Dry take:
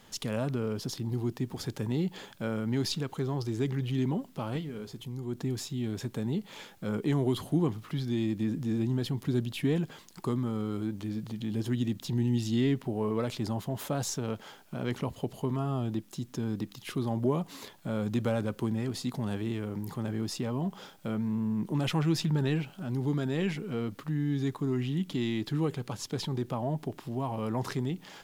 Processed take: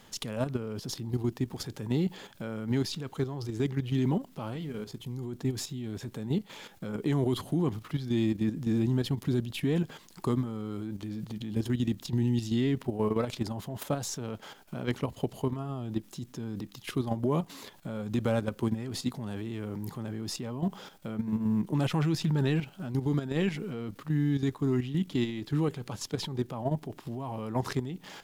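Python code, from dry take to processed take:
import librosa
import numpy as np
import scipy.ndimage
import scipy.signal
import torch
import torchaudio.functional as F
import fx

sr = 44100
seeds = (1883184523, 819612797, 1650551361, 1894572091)

y = fx.level_steps(x, sr, step_db=10)
y = y * librosa.db_to_amplitude(4.0)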